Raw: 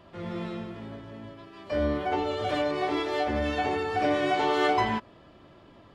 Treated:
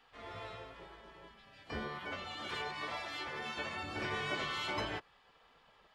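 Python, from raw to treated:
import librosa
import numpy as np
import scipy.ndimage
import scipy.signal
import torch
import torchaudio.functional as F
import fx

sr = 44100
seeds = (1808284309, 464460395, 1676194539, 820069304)

y = fx.spec_gate(x, sr, threshold_db=-10, keep='weak')
y = fx.low_shelf(y, sr, hz=260.0, db=-7.5, at=(1.88, 3.83))
y = y * librosa.db_to_amplitude(-4.5)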